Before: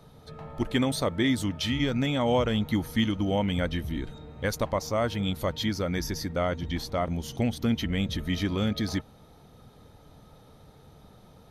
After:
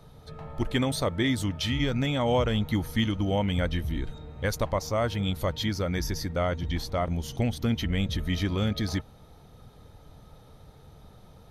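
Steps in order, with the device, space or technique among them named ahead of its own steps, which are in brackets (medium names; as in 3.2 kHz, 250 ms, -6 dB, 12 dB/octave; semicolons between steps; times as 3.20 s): low shelf boost with a cut just above (bass shelf 93 Hz +7 dB; peaking EQ 240 Hz -3 dB 0.99 oct)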